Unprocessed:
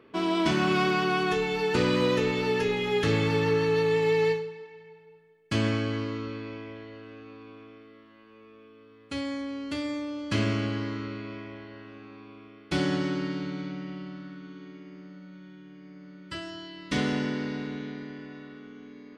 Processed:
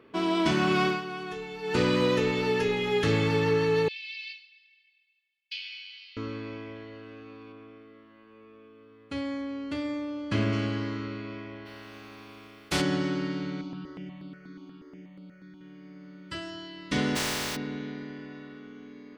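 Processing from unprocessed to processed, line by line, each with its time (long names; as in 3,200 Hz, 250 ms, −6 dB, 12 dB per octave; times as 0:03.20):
0:00.86–0:01.78: duck −10.5 dB, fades 0.16 s
0:03.88–0:06.17: Chebyshev band-pass filter 2,400–5,000 Hz, order 3
0:07.52–0:10.53: high-shelf EQ 4,500 Hz −11 dB
0:11.65–0:12.80: compressing power law on the bin magnitudes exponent 0.59
0:13.61–0:15.61: step-sequenced phaser 8.3 Hz 480–6,000 Hz
0:17.15–0:17.55: compressing power law on the bin magnitudes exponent 0.26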